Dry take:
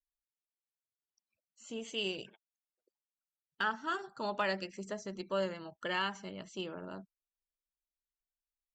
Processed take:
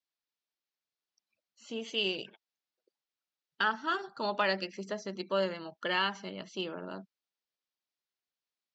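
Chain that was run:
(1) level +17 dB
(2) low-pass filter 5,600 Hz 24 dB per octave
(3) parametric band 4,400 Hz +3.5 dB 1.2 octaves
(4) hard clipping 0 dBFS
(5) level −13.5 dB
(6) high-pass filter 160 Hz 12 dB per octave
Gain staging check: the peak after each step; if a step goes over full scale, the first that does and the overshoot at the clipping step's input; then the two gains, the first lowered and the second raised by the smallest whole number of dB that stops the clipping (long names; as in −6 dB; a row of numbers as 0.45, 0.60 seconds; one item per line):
−3.5, −3.5, −2.5, −2.5, −16.0, −15.5 dBFS
no step passes full scale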